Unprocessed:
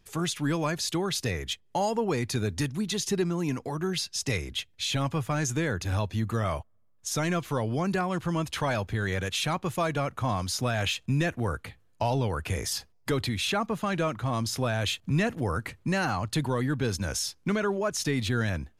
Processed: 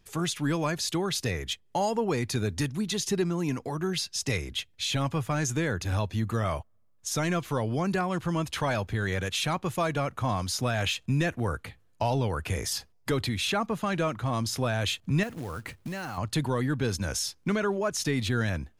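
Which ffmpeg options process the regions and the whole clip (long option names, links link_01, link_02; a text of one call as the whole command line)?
ffmpeg -i in.wav -filter_complex "[0:a]asettb=1/sr,asplit=3[link_01][link_02][link_03];[link_01]atrim=end=15.234[link_04];[link_02]atrim=start=15.23:end=16.18,asetpts=PTS-STARTPTS,afade=type=in:duration=0.004:curve=qsin,afade=type=out:start_time=0.946:duration=0.004:curve=qsin,acrusher=bits=4:mode=log:mix=0:aa=0.000001,acompressor=threshold=-32dB:ratio=5:attack=3.2:release=140:knee=1:detection=peak[link_05];[link_03]atrim=start=16.176[link_06];[link_04][link_05]acrossfade=duration=0.004:curve1=hsin:curve2=qsin[link_07];[link_07][link_06]acrossfade=duration=0.004:curve1=qsin:curve2=hsin" out.wav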